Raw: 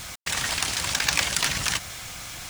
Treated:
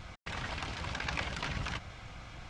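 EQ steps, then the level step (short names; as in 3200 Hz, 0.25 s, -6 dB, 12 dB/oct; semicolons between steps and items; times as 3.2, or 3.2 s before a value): tape spacing loss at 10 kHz 31 dB; low shelf 79 Hz +6 dB; notch 1800 Hz, Q 16; -4.5 dB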